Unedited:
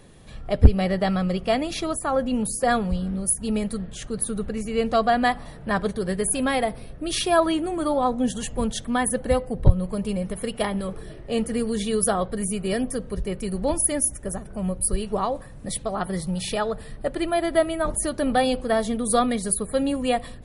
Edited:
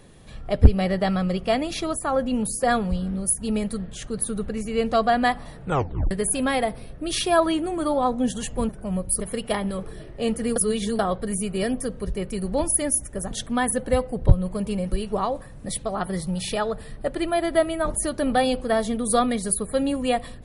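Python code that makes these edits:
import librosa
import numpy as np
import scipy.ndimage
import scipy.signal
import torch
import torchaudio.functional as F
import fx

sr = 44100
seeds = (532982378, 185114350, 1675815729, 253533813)

y = fx.edit(x, sr, fx.tape_stop(start_s=5.61, length_s=0.5),
    fx.swap(start_s=8.69, length_s=1.61, other_s=14.41, other_length_s=0.51),
    fx.reverse_span(start_s=11.66, length_s=0.43), tone=tone)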